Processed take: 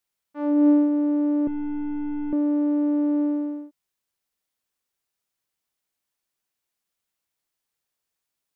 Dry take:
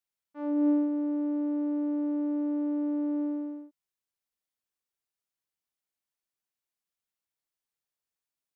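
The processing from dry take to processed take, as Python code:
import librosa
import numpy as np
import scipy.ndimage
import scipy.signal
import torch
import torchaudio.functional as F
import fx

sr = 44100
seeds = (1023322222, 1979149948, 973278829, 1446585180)

y = fx.delta_mod(x, sr, bps=16000, step_db=-54.0, at=(1.47, 2.33))
y = y * librosa.db_to_amplitude(7.5)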